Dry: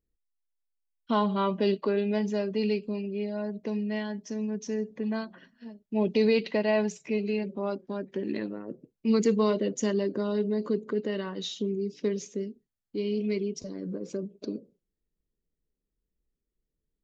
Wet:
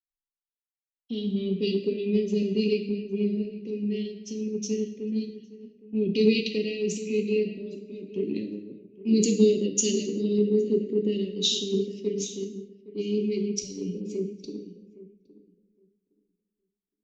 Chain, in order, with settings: in parallel at +1.5 dB: peak limiter -23.5 dBFS, peak gain reduction 10 dB; on the sum: elliptic band-stop 420–2600 Hz, stop band 40 dB; hum notches 50/100/150/200/250/300/350/400/450 Hz; filtered feedback delay 814 ms, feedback 38%, low-pass 1.9 kHz, level -8.5 dB; on a send at -4.5 dB: reverberation, pre-delay 3 ms; on the sum: three bands expanded up and down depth 100%; trim -2.5 dB

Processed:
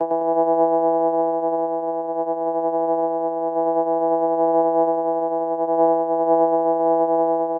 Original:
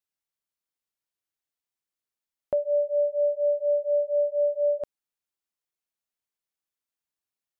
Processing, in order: Paulstretch 26×, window 0.25 s, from 4.22 s; vocoder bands 8, saw 165 Hz; on a send: feedback delay 103 ms, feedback 49%, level -4 dB

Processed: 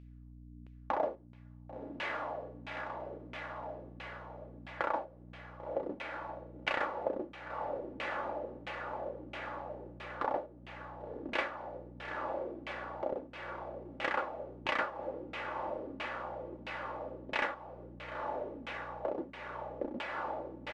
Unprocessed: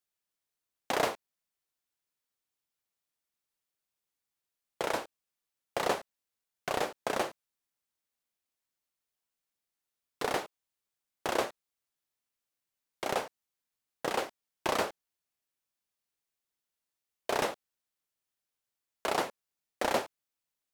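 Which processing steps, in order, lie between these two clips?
comb 3.5 ms, depth 46%; hum 60 Hz, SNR 16 dB; tilt shelf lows -5.5 dB, about 1.5 kHz; echo that smears into a reverb 1074 ms, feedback 52%, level -7.5 dB; compression 2:1, threshold -47 dBFS, peak gain reduction 12.5 dB; on a send at -16 dB: reverberation, pre-delay 3 ms; on the sum: LFO low-pass saw down 1.5 Hz 220–2700 Hz; trim +7 dB

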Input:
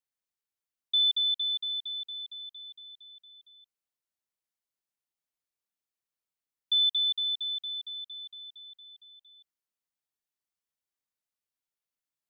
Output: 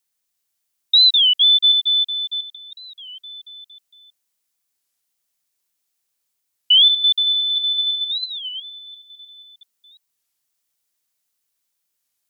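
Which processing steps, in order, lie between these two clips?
chunks repeated in reverse 344 ms, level -5 dB; treble shelf 3.3 kHz +10.5 dB; warped record 33 1/3 rpm, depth 250 cents; trim +7 dB

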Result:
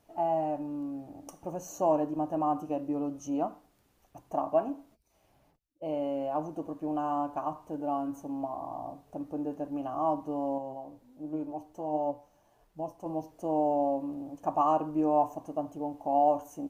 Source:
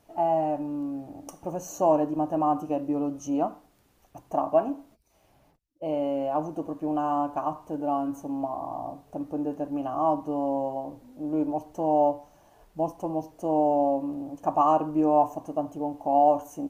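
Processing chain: 10.58–13.06 s: flange 1.4 Hz, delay 5.8 ms, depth 4.7 ms, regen +66%; trim -4.5 dB

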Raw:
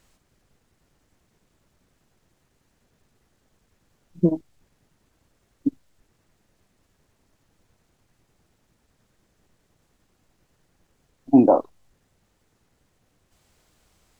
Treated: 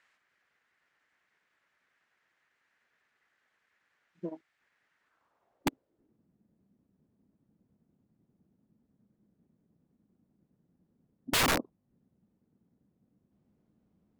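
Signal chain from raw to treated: band-pass sweep 1.8 kHz -> 210 Hz, 4.99–6.24 s; integer overflow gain 24.5 dB; trim +3.5 dB

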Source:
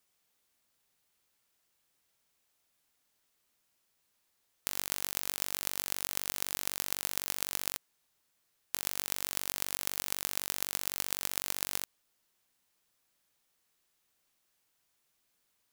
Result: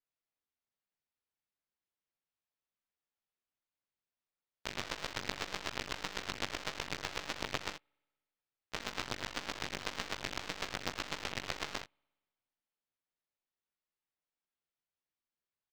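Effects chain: chorus 1.8 Hz, delay 16 ms, depth 5.4 ms; harmony voices -12 st -16 dB, -4 st -8 dB, +4 st -3 dB; distance through air 180 m; spring tank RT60 1.5 s, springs 59 ms, DRR 18.5 dB; upward expansion 2.5:1, over -58 dBFS; trim +10.5 dB

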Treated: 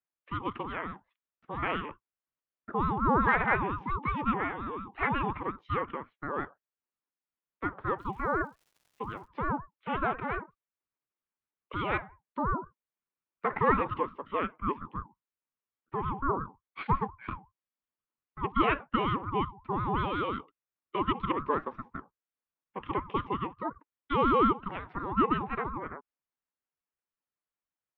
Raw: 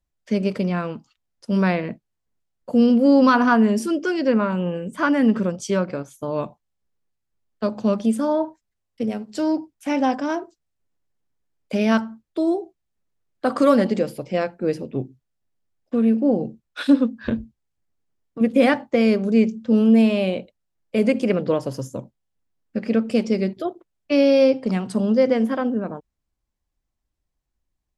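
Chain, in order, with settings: mistuned SSB +260 Hz 300–2500 Hz; 7.98–9.26 s: crackle 490 per s -50 dBFS; ring modulator with a swept carrier 430 Hz, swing 35%, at 5.6 Hz; trim -5 dB

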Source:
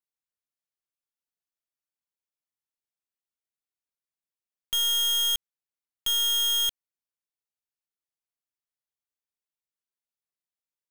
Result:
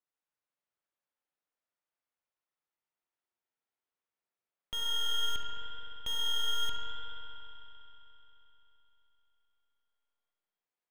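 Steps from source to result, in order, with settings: overdrive pedal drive 11 dB, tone 1 kHz, clips at -24 dBFS; tape echo 69 ms, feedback 87%, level -7 dB, low-pass 4.8 kHz; spring tank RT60 3.7 s, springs 43 ms, chirp 70 ms, DRR 2.5 dB

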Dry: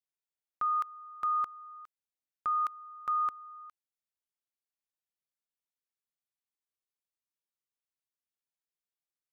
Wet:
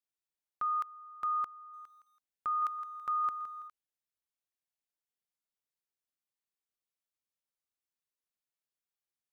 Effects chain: 1.57–3.68 s: bit-crushed delay 165 ms, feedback 35%, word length 11-bit, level -11.5 dB; trim -2.5 dB

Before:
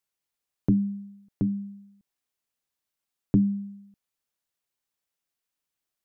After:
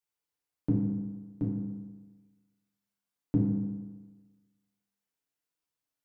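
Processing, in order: FDN reverb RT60 1.3 s, low-frequency decay 0.95×, high-frequency decay 0.45×, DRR -4.5 dB; trim -8.5 dB

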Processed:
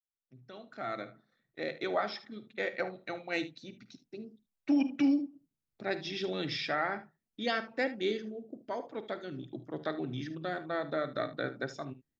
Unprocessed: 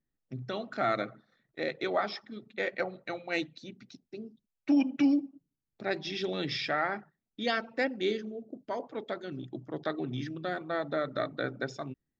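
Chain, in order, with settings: fade-in on the opening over 1.95 s; early reflections 51 ms -16.5 dB, 75 ms -16 dB; trim -2 dB

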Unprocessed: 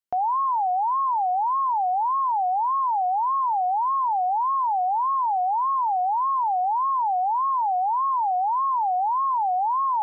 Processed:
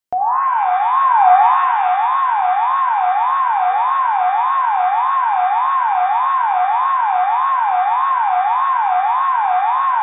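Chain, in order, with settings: 0.93–1.54 s: peaking EQ 500 Hz +13.5 dB 1.1 oct; 3.70–4.00 s: painted sound rise 450–980 Hz -49 dBFS; pitch-shifted reverb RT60 1.5 s, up +7 st, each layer -8 dB, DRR 4.5 dB; trim +5.5 dB

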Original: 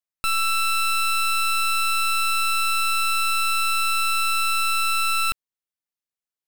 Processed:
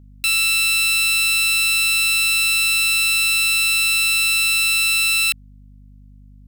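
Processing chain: steep high-pass 1.8 kHz 48 dB/octave; hum 50 Hz, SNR 26 dB; trim +8 dB

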